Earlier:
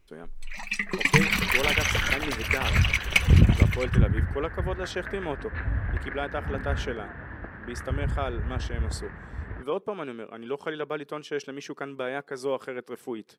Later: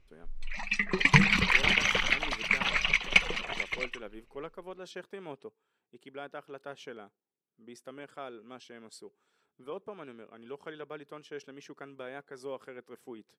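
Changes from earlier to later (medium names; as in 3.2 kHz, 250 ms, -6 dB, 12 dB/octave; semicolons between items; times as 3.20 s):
speech -11.0 dB; first sound: add low-pass 5.2 kHz 12 dB/octave; second sound: muted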